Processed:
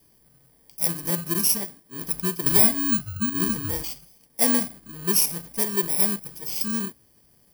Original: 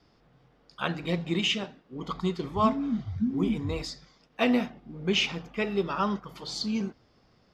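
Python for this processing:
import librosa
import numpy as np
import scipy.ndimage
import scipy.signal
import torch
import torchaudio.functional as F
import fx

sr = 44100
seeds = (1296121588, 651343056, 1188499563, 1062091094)

y = fx.bit_reversed(x, sr, seeds[0], block=32)
y = fx.high_shelf(y, sr, hz=6700.0, db=9.0)
y = fx.band_squash(y, sr, depth_pct=100, at=(2.46, 2.99))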